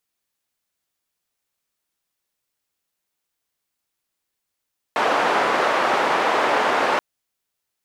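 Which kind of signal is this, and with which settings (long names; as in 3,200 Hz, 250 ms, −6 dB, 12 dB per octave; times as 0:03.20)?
band-limited noise 460–1,100 Hz, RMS −19.5 dBFS 2.03 s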